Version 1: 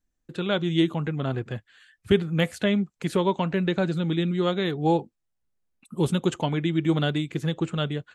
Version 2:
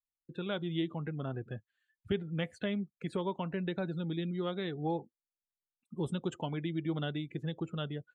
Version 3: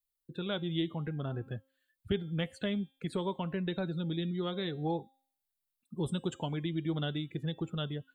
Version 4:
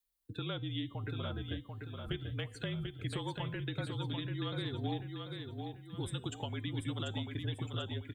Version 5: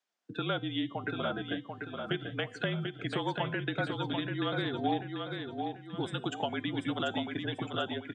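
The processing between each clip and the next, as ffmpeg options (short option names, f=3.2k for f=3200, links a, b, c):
-af "afftdn=nr=22:nf=-39,acompressor=threshold=-31dB:ratio=1.5,volume=-7dB"
-af "lowshelf=f=66:g=11,bandreject=f=267.1:t=h:w=4,bandreject=f=534.2:t=h:w=4,bandreject=f=801.3:t=h:w=4,bandreject=f=1.0684k:t=h:w=4,bandreject=f=1.3355k:t=h:w=4,bandreject=f=1.6026k:t=h:w=4,bandreject=f=1.8697k:t=h:w=4,bandreject=f=2.1368k:t=h:w=4,bandreject=f=2.4039k:t=h:w=4,bandreject=f=2.671k:t=h:w=4,bandreject=f=2.9381k:t=h:w=4,bandreject=f=3.2052k:t=h:w=4,bandreject=f=3.4723k:t=h:w=4,bandreject=f=3.7394k:t=h:w=4,bandreject=f=4.0065k:t=h:w=4,bandreject=f=4.2736k:t=h:w=4,bandreject=f=4.5407k:t=h:w=4,bandreject=f=4.8078k:t=h:w=4,bandreject=f=5.0749k:t=h:w=4,bandreject=f=5.342k:t=h:w=4,bandreject=f=5.6091k:t=h:w=4,bandreject=f=5.8762k:t=h:w=4,bandreject=f=6.1433k:t=h:w=4,bandreject=f=6.4104k:t=h:w=4,bandreject=f=6.6775k:t=h:w=4,bandreject=f=6.9446k:t=h:w=4,bandreject=f=7.2117k:t=h:w=4,bandreject=f=7.4788k:t=h:w=4,bandreject=f=7.7459k:t=h:w=4,bandreject=f=8.013k:t=h:w=4,bandreject=f=8.2801k:t=h:w=4,aexciter=amount=1.9:drive=3.2:freq=3.4k"
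-filter_complex "[0:a]acrossover=split=280|1200[a][b][c];[a]acompressor=threshold=-43dB:ratio=4[d];[b]acompressor=threshold=-46dB:ratio=4[e];[c]acompressor=threshold=-44dB:ratio=4[f];[d][e][f]amix=inputs=3:normalize=0,afreqshift=-42,asplit=2[g][h];[h]aecho=0:1:740|1480|2220|2960|3700:0.562|0.214|0.0812|0.0309|0.0117[i];[g][i]amix=inputs=2:normalize=0,volume=2dB"
-af "highpass=f=160:w=0.5412,highpass=f=160:w=1.3066,equalizer=f=700:t=q:w=4:g=9,equalizer=f=1.5k:t=q:w=4:g=6,equalizer=f=4.1k:t=q:w=4:g=-7,lowpass=f=6.2k:w=0.5412,lowpass=f=6.2k:w=1.3066,volume=6.5dB"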